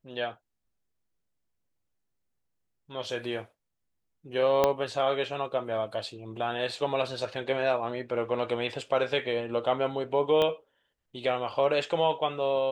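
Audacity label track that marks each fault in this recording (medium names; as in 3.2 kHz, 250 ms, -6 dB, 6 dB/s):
4.640000	4.640000	pop -9 dBFS
10.420000	10.420000	pop -15 dBFS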